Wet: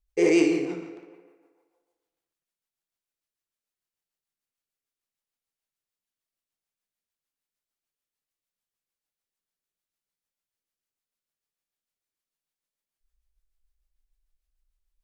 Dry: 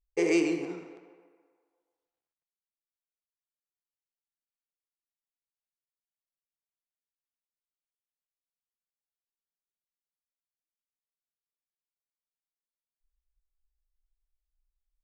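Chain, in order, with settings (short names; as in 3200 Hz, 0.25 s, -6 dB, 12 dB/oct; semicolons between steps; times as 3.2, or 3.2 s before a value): rotary speaker horn 6.7 Hz; flutter echo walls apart 9.8 m, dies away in 0.39 s; gain +6.5 dB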